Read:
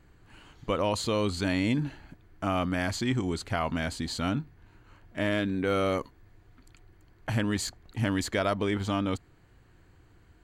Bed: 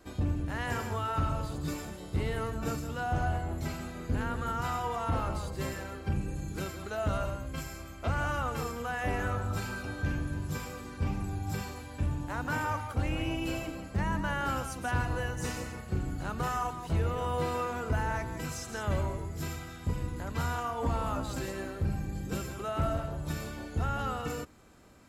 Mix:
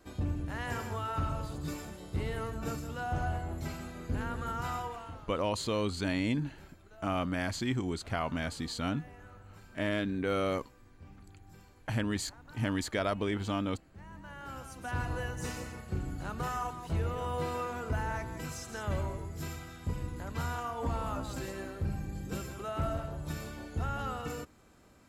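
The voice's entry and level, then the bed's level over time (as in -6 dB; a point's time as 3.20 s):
4.60 s, -4.0 dB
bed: 4.80 s -3 dB
5.27 s -21 dB
13.95 s -21 dB
15.06 s -3 dB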